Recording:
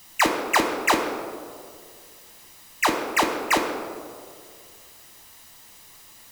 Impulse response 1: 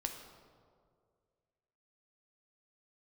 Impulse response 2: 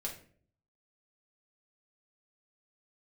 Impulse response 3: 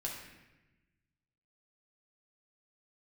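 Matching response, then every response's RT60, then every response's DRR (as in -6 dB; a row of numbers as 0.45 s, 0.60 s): 1; 2.1 s, 0.50 s, 1.1 s; 3.5 dB, -2.0 dB, -3.5 dB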